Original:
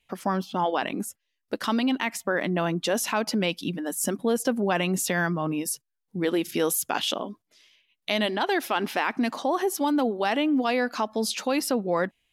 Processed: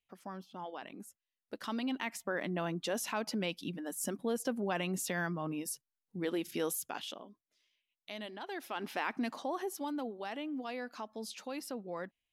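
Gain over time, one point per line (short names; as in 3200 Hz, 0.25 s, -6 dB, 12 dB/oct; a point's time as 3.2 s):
0.94 s -18.5 dB
2.03 s -10 dB
6.68 s -10 dB
7.24 s -18.5 dB
8.42 s -18.5 dB
9.06 s -9 dB
10.26 s -16 dB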